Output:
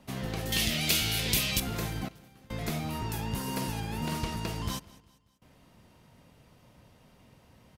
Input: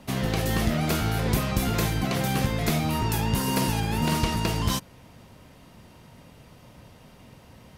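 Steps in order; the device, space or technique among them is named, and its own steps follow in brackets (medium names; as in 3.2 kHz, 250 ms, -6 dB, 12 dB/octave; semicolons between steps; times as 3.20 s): 0.52–1.60 s: resonant high shelf 1.9 kHz +13.5 dB, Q 1.5; trance gate with a delay (trance gate "xxxxxxxxxx..xx" 72 bpm -24 dB; feedback delay 196 ms, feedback 46%, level -22 dB); trim -8.5 dB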